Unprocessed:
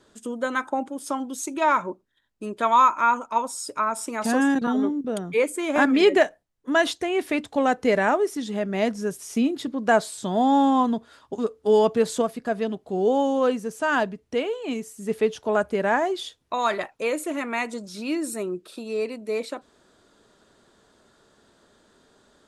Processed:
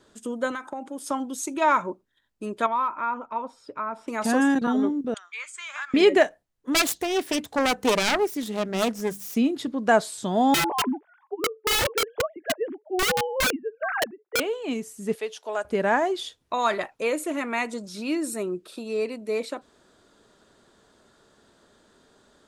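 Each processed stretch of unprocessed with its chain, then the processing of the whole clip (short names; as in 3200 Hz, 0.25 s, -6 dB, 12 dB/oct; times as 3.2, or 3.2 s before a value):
0.51–1.11 low shelf 120 Hz -9.5 dB + compressor, threshold -29 dBFS
2.66–4.08 compressor 1.5:1, threshold -31 dBFS + hard clip -17 dBFS + air absorption 360 m
5.14–5.94 elliptic band-pass 1200–7400 Hz, stop band 80 dB + compressor 2.5:1, threshold -33 dBFS
6.73–9.35 self-modulated delay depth 0.5 ms + high shelf 7800 Hz +6.5 dB + notches 50/100/150/200 Hz
10.54–14.4 sine-wave speech + LPF 2100 Hz 24 dB/oct + wrapped overs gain 18 dB
15.15–15.65 HPF 690 Hz + bell 1300 Hz -5.5 dB 1.6 oct
whole clip: dry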